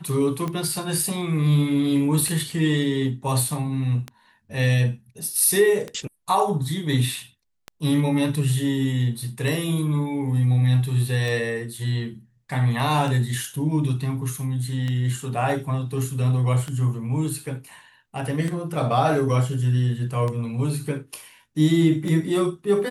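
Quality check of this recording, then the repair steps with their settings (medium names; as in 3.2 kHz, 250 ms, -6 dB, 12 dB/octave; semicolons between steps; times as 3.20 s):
tick 33 1/3 rpm -16 dBFS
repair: de-click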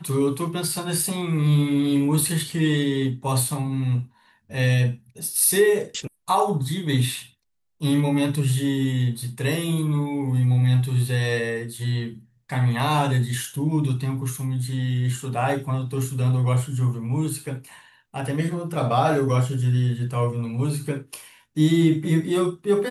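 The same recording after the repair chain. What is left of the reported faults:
nothing left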